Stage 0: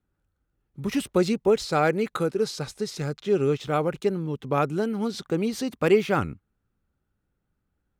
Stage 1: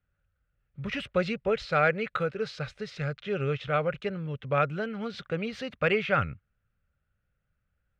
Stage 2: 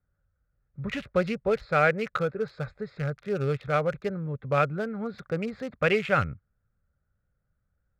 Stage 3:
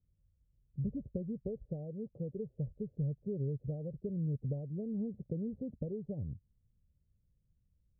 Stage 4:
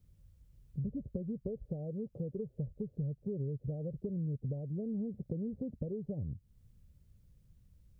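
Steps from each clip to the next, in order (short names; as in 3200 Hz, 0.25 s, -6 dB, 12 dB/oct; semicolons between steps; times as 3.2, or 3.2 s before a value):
EQ curve 130 Hz 0 dB, 340 Hz -15 dB, 560 Hz +1 dB, 910 Hz -10 dB, 1400 Hz +3 dB, 2700 Hz +3 dB, 11000 Hz -28 dB
Wiener smoothing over 15 samples; gain +2 dB
compressor 6:1, threshold -31 dBFS, peak gain reduction 13.5 dB; Gaussian blur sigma 22 samples; gain +2 dB
compressor 2.5:1, threshold -53 dBFS, peak gain reduction 14.5 dB; gain +12 dB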